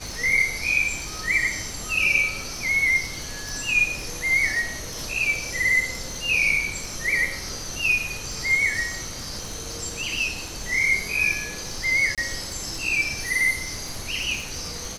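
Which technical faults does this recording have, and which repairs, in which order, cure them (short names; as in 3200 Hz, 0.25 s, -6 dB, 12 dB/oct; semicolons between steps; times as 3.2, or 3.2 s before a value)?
crackle 22/s -30 dBFS
3.49 pop
12.15–12.18 gap 27 ms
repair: de-click; interpolate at 12.15, 27 ms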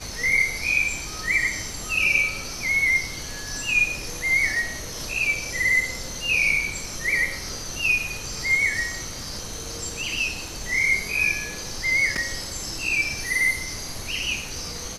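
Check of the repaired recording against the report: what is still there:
none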